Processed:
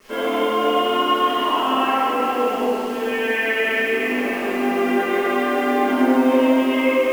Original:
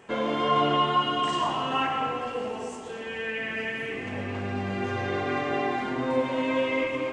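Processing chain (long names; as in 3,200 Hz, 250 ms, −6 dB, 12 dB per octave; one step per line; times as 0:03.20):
elliptic band-pass filter 250–3,300 Hz, stop band 40 dB
brickwall limiter −23 dBFS, peak gain reduction 10.5 dB
bit reduction 8 bits
convolution reverb RT60 2.2 s, pre-delay 4 ms, DRR −15 dB
level −3.5 dB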